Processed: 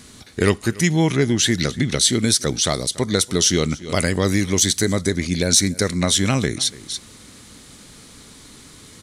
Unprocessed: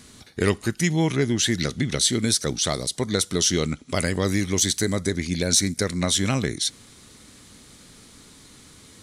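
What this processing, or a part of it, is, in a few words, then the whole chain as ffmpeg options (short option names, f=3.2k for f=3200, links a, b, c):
ducked delay: -filter_complex "[0:a]asplit=3[a][b][c];[b]adelay=286,volume=-7dB[d];[c]apad=whole_len=410723[e];[d][e]sidechaincompress=threshold=-38dB:ratio=12:attack=9.5:release=192[f];[a][f]amix=inputs=2:normalize=0,volume=4dB"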